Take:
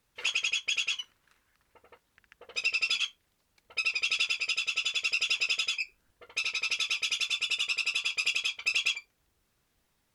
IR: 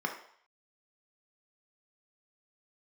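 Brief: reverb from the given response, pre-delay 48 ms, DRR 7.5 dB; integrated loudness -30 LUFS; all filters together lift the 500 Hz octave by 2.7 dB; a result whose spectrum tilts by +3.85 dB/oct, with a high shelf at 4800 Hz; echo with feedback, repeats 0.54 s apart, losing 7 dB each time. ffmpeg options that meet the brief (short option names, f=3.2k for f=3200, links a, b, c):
-filter_complex "[0:a]equalizer=f=500:t=o:g=3,highshelf=f=4.8k:g=3.5,aecho=1:1:540|1080|1620|2160|2700:0.447|0.201|0.0905|0.0407|0.0183,asplit=2[a][b];[1:a]atrim=start_sample=2205,adelay=48[c];[b][c]afir=irnorm=-1:irlink=0,volume=-14dB[d];[a][d]amix=inputs=2:normalize=0,volume=-3dB"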